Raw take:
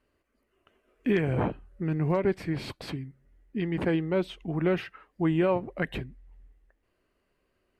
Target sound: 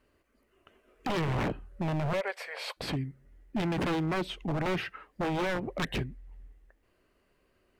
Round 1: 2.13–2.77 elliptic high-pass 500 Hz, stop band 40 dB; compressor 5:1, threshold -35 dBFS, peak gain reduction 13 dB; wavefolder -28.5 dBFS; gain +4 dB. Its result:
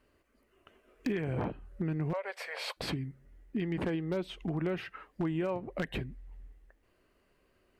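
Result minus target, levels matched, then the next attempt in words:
compressor: peak gain reduction +8 dB
2.13–2.77 elliptic high-pass 500 Hz, stop band 40 dB; compressor 5:1, threshold -25 dBFS, peak gain reduction 5 dB; wavefolder -28.5 dBFS; gain +4 dB

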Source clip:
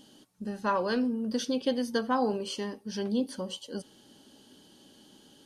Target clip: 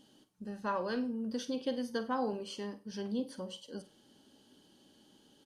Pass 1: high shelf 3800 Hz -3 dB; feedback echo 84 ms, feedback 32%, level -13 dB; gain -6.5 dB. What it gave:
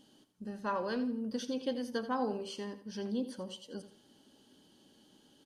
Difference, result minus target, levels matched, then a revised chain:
echo 35 ms late
high shelf 3800 Hz -3 dB; feedback echo 49 ms, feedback 32%, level -13 dB; gain -6.5 dB

